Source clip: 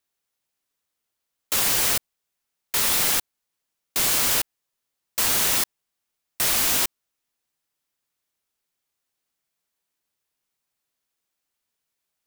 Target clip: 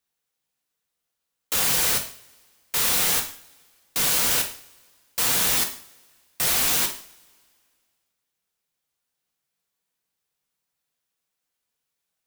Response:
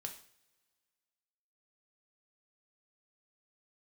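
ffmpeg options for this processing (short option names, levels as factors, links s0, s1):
-filter_complex "[1:a]atrim=start_sample=2205[s0];[0:a][s0]afir=irnorm=-1:irlink=0,volume=1.33"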